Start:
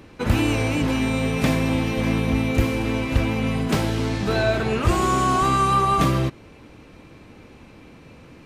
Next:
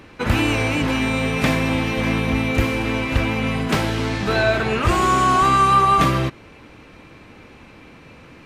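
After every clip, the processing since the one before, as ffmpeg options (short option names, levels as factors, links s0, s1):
-af "equalizer=f=1800:t=o:w=2.5:g=6"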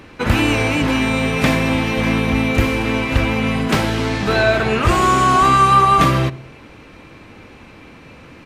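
-filter_complex "[0:a]asplit=2[s0][s1];[s1]adelay=68,lowpass=f=950:p=1,volume=0.178,asplit=2[s2][s3];[s3]adelay=68,lowpass=f=950:p=1,volume=0.54,asplit=2[s4][s5];[s5]adelay=68,lowpass=f=950:p=1,volume=0.54,asplit=2[s6][s7];[s7]adelay=68,lowpass=f=950:p=1,volume=0.54,asplit=2[s8][s9];[s9]adelay=68,lowpass=f=950:p=1,volume=0.54[s10];[s0][s2][s4][s6][s8][s10]amix=inputs=6:normalize=0,volume=1.41"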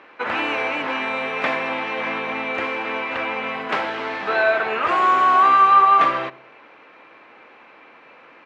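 -af "highpass=630,lowpass=2200"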